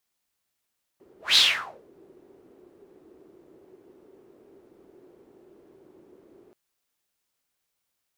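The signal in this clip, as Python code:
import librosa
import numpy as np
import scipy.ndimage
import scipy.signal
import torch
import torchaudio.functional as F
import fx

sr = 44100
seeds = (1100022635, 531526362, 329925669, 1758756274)

y = fx.whoosh(sr, seeds[0], length_s=5.53, peak_s=0.36, rise_s=0.18, fall_s=0.52, ends_hz=370.0, peak_hz=3900.0, q=5.5, swell_db=37.5)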